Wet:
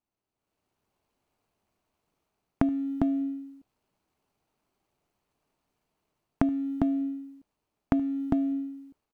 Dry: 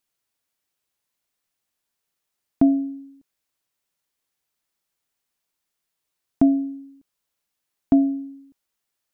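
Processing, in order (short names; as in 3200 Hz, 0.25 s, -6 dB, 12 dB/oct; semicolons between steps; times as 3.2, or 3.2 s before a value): median filter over 25 samples; AGC gain up to 11.5 dB; on a send: tapped delay 75/402 ms -12.5/-6.5 dB; on the sum: compressor 16:1, threshold -22 dBFS, peak gain reduction 16.5 dB; notch 520 Hz, Q 12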